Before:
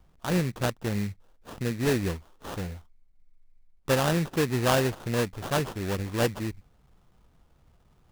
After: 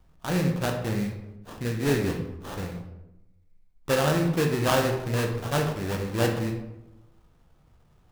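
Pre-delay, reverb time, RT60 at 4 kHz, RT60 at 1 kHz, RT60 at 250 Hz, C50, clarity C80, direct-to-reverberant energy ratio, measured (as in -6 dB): 15 ms, 0.90 s, 0.55 s, 0.85 s, 1.1 s, 6.5 dB, 8.5 dB, 2.0 dB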